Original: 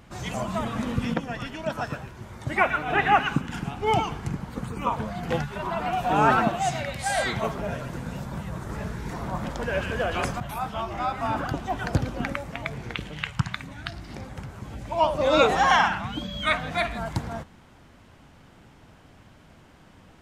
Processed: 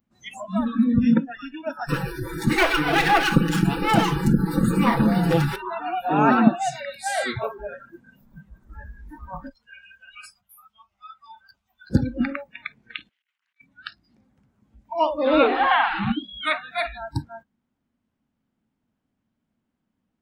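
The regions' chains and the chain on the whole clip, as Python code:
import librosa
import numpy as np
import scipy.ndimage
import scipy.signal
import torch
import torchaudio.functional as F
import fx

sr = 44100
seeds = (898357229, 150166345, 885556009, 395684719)

y = fx.chain(x, sr, fx.lower_of_two(delay_ms=6.0),
    fx.high_shelf(hz=10000.0, db=8.0),
    fx.env_flatten(amount_pct=50), at=(1.88, 5.56))
y = fx.chain(y, sr, fx.tone_stack(knobs='10-0-10'),
    fx.notch(hz=1700.0, q=10.0),
    fx.ensemble(), at=(9.49, 11.9))
y = fx.chain(y, sr, fx.ladder_bandpass(hz=2400.0, resonance_pct=20),
    fx.high_shelf(hz=2900.0, db=7.0),
    fx.over_compress(threshold_db=-52.0, ratio=-1.0), at=(13.09, 13.61))
y = fx.chain(y, sr, fx.delta_mod(bps=64000, step_db=-20.0),
    fx.lowpass(hz=3300.0, slope=24), at=(15.27, 16.12))
y = fx.noise_reduce_blind(y, sr, reduce_db=30)
y = fx.peak_eq(y, sr, hz=230.0, db=13.5, octaves=0.73)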